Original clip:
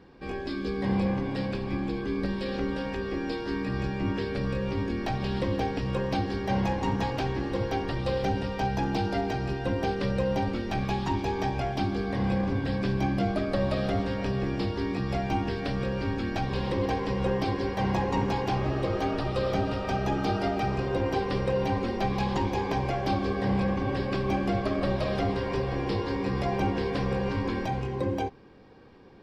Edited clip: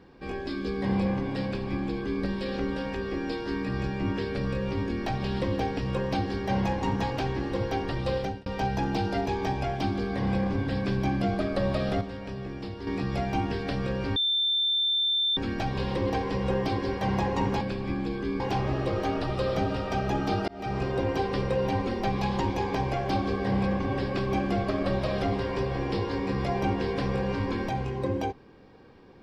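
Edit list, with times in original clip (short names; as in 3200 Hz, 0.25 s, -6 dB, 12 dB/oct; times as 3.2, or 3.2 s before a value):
1.44–2.23 copy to 18.37
8.16–8.46 fade out
9.26–11.23 cut
13.98–14.84 gain -7.5 dB
16.13 add tone 3560 Hz -22.5 dBFS 1.21 s
20.45–20.76 fade in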